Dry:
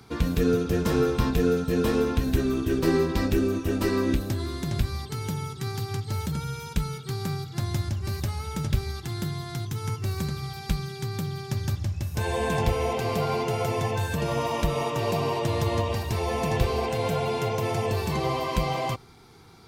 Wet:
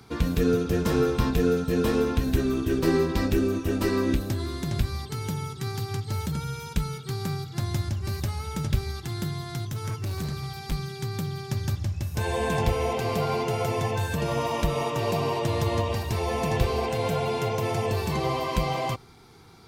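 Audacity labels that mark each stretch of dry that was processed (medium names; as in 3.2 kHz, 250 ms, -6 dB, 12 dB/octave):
9.690000	10.720000	hard clipper -26.5 dBFS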